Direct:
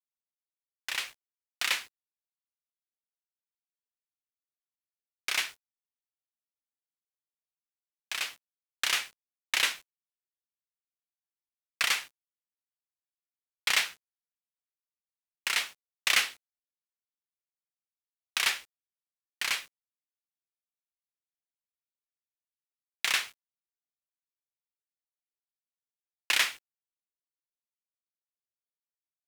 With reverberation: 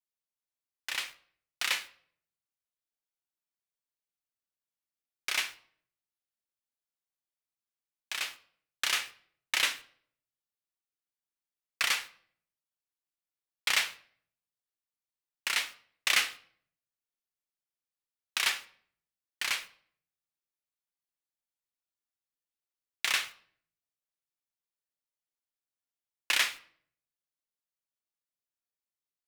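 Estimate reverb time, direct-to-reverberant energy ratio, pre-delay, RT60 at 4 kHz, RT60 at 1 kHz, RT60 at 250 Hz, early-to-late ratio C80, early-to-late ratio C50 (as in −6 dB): 0.60 s, 11.5 dB, 3 ms, 0.45 s, 0.55 s, 0.80 s, 21.0 dB, 17.5 dB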